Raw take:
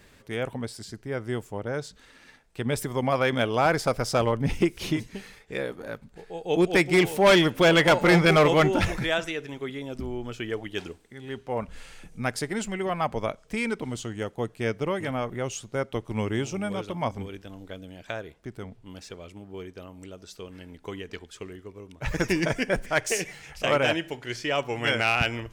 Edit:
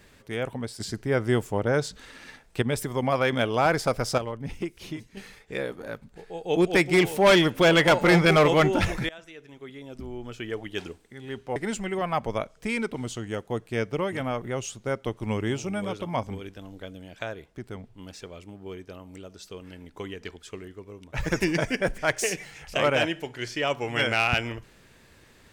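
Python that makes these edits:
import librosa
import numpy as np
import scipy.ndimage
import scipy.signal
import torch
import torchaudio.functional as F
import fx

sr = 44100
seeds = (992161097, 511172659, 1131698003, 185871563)

y = fx.edit(x, sr, fx.clip_gain(start_s=0.8, length_s=1.82, db=7.0),
    fx.clip_gain(start_s=4.18, length_s=0.99, db=-9.0),
    fx.fade_in_from(start_s=9.09, length_s=1.73, floor_db=-22.5),
    fx.cut(start_s=11.56, length_s=0.88), tone=tone)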